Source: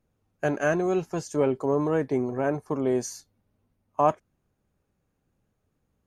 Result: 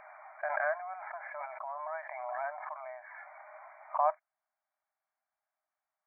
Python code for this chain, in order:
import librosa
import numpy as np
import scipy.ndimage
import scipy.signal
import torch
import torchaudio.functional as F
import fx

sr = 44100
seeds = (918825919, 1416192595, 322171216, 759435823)

y = fx.brickwall_bandpass(x, sr, low_hz=590.0, high_hz=2400.0)
y = fx.pre_swell(y, sr, db_per_s=26.0)
y = F.gain(torch.from_numpy(y), -6.0).numpy()